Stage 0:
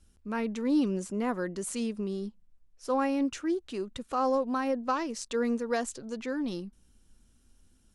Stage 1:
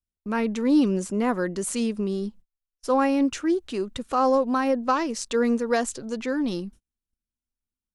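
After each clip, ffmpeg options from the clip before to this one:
-af "agate=range=-36dB:threshold=-50dB:ratio=16:detection=peak,volume=6.5dB"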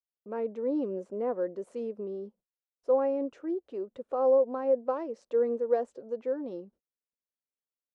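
-af "bandpass=f=520:t=q:w=3.2:csg=0"

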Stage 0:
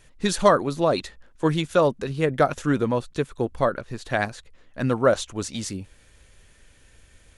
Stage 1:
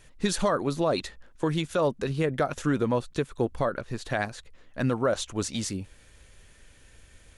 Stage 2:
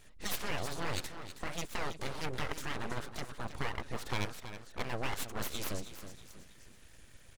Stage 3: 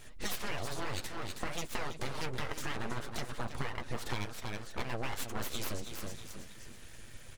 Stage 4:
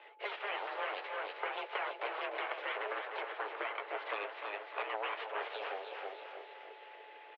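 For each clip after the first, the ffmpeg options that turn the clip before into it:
-af "alimiter=limit=-15dB:level=0:latency=1:release=186"
-filter_complex "[0:a]afftfilt=real='re*lt(hypot(re,im),0.282)':imag='im*lt(hypot(re,im),0.282)':win_size=1024:overlap=0.75,asplit=2[a][b];[b]aecho=0:1:321|642|963|1284:0.266|0.109|0.0447|0.0183[c];[a][c]amix=inputs=2:normalize=0,aeval=exprs='abs(val(0))':c=same,volume=-2.5dB"
-af "acompressor=threshold=-38dB:ratio=6,flanger=delay=8:depth=1.2:regen=-42:speed=0.54:shape=triangular,volume=10.5dB"
-af "aeval=exprs='val(0)+0.000891*sin(2*PI*660*n/s)':c=same,highpass=f=210:t=q:w=0.5412,highpass=f=210:t=q:w=1.307,lowpass=f=2.9k:t=q:w=0.5176,lowpass=f=2.9k:t=q:w=0.7071,lowpass=f=2.9k:t=q:w=1.932,afreqshift=200,aecho=1:1:300|600|900|1200|1500|1800|2100:0.335|0.194|0.113|0.0654|0.0379|0.022|0.0128,volume=1.5dB"

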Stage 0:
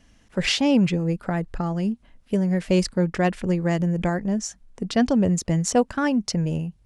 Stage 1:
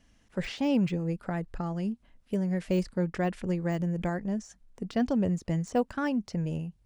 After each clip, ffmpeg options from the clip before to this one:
-af "deesser=0.9,volume=-7dB"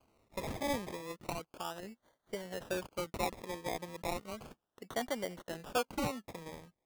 -af "highpass=630,acrusher=samples=24:mix=1:aa=0.000001:lfo=1:lforange=14.4:lforate=0.34"

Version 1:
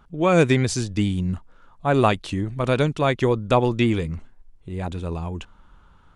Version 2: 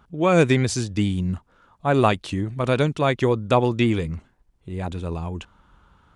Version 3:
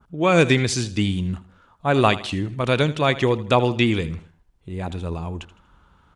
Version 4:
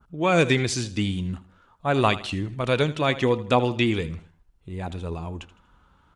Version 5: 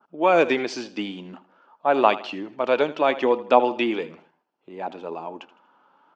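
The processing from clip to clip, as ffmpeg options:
-af "highpass=44"
-af "aecho=1:1:80|160|240:0.15|0.0584|0.0228,adynamicequalizer=threshold=0.0112:dfrequency=3200:dqfactor=0.76:tfrequency=3200:tqfactor=0.76:attack=5:release=100:ratio=0.375:range=3:mode=boostabove:tftype=bell"
-af "flanger=delay=0.7:depth=3.4:regen=78:speed=0.44:shape=sinusoidal,volume=1.5dB"
-af "highpass=f=260:w=0.5412,highpass=f=260:w=1.3066,equalizer=f=610:t=q:w=4:g=5,equalizer=f=860:t=q:w=4:g=7,equalizer=f=2k:t=q:w=4:g=-4,equalizer=f=3.8k:t=q:w=4:g=-9,lowpass=f=4.8k:w=0.5412,lowpass=f=4.8k:w=1.3066,volume=1dB"

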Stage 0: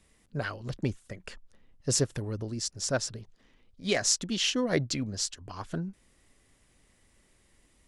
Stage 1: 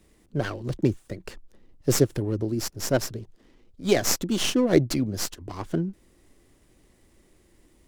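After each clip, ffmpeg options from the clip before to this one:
-filter_complex "[0:a]equalizer=f=340:w=3.2:g=8,acrossover=split=100|930[a][b][c];[c]aeval=exprs='max(val(0),0)':c=same[d];[a][b][d]amix=inputs=3:normalize=0,volume=5.5dB"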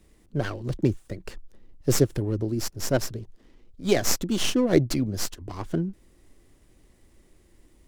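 -af "lowshelf=f=77:g=6.5,volume=-1dB"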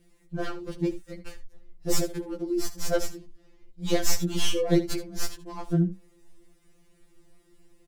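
-af "aecho=1:1:74:0.188,afftfilt=real='re*2.83*eq(mod(b,8),0)':imag='im*2.83*eq(mod(b,8),0)':win_size=2048:overlap=0.75"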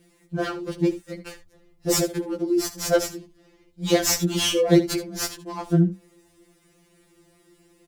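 -af "highpass=f=120:p=1,volume=6.5dB"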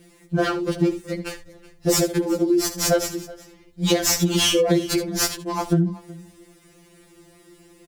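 -af "acompressor=threshold=-22dB:ratio=12,aecho=1:1:373:0.0944,volume=7dB"

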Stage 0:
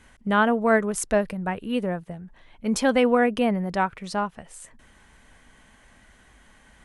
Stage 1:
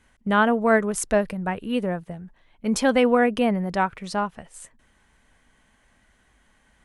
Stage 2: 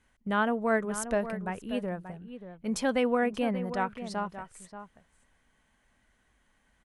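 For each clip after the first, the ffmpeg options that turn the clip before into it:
-af "agate=range=-8dB:threshold=-44dB:ratio=16:detection=peak,volume=1dB"
-filter_complex "[0:a]asplit=2[a][b];[b]adelay=583.1,volume=-11dB,highshelf=f=4k:g=-13.1[c];[a][c]amix=inputs=2:normalize=0,volume=-8dB"

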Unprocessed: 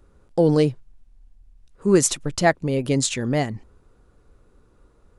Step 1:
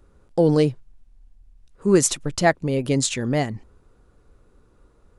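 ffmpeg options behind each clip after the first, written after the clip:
-af anull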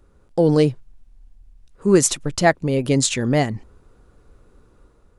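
-af "dynaudnorm=f=210:g=5:m=4dB"

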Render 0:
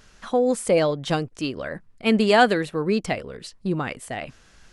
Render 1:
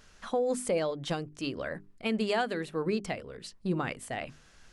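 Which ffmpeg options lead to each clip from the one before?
-af "bandreject=f=50:t=h:w=6,bandreject=f=100:t=h:w=6,bandreject=f=150:t=h:w=6,bandreject=f=200:t=h:w=6,bandreject=f=250:t=h:w=6,bandreject=f=300:t=h:w=6,bandreject=f=350:t=h:w=6,bandreject=f=400:t=h:w=6,alimiter=limit=-15.5dB:level=0:latency=1:release=453,volume=-4.5dB"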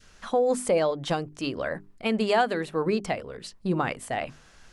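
-af "adynamicequalizer=threshold=0.00794:dfrequency=840:dqfactor=0.99:tfrequency=840:tqfactor=0.99:attack=5:release=100:ratio=0.375:range=2.5:mode=boostabove:tftype=bell,volume=3.5dB"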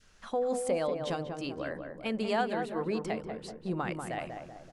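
-filter_complex "[0:a]asplit=2[a][b];[b]adelay=191,lowpass=f=1.2k:p=1,volume=-4.5dB,asplit=2[c][d];[d]adelay=191,lowpass=f=1.2k:p=1,volume=0.54,asplit=2[e][f];[f]adelay=191,lowpass=f=1.2k:p=1,volume=0.54,asplit=2[g][h];[h]adelay=191,lowpass=f=1.2k:p=1,volume=0.54,asplit=2[i][j];[j]adelay=191,lowpass=f=1.2k:p=1,volume=0.54,asplit=2[k][l];[l]adelay=191,lowpass=f=1.2k:p=1,volume=0.54,asplit=2[m][n];[n]adelay=191,lowpass=f=1.2k:p=1,volume=0.54[o];[a][c][e][g][i][k][m][o]amix=inputs=8:normalize=0,volume=-7.5dB"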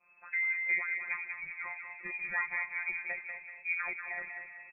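-filter_complex "[0:a]afftfilt=real='hypot(re,im)*cos(PI*b)':imag='0':win_size=1024:overlap=0.75,lowpass=f=2.2k:t=q:w=0.5098,lowpass=f=2.2k:t=q:w=0.6013,lowpass=f=2.2k:t=q:w=0.9,lowpass=f=2.2k:t=q:w=2.563,afreqshift=-2600,asplit=2[a][b];[b]adelay=237,lowpass=f=1.9k:p=1,volume=-11.5dB,asplit=2[c][d];[d]adelay=237,lowpass=f=1.9k:p=1,volume=0.41,asplit=2[e][f];[f]adelay=237,lowpass=f=1.9k:p=1,volume=0.41,asplit=2[g][h];[h]adelay=237,lowpass=f=1.9k:p=1,volume=0.41[i];[a][c][e][g][i]amix=inputs=5:normalize=0"

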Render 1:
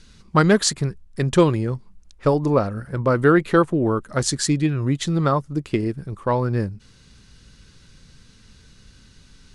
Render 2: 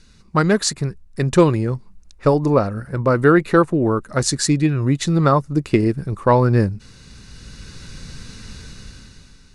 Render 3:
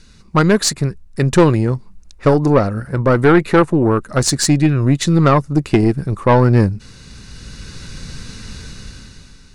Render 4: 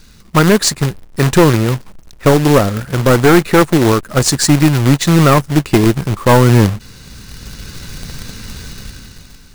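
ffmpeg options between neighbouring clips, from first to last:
-af "dynaudnorm=f=260:g=7:m=15dB,bandreject=f=3.2k:w=7.9,volume=-1dB"
-af "aeval=exprs='(tanh(2.82*val(0)+0.35)-tanh(0.35))/2.82':c=same,volume=5.5dB"
-af "acrusher=bits=2:mode=log:mix=0:aa=0.000001,volume=2.5dB"

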